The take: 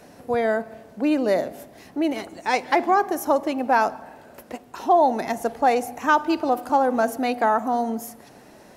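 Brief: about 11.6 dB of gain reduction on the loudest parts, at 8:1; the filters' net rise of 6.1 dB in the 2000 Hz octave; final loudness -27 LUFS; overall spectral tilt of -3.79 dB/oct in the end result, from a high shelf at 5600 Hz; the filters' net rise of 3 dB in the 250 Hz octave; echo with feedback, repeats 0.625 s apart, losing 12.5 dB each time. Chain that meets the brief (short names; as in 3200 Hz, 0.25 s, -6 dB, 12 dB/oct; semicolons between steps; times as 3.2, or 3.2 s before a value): bell 250 Hz +3.5 dB; bell 2000 Hz +7.5 dB; high shelf 5600 Hz +5 dB; compressor 8:1, threshold -24 dBFS; feedback echo 0.625 s, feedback 24%, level -12.5 dB; gain +2.5 dB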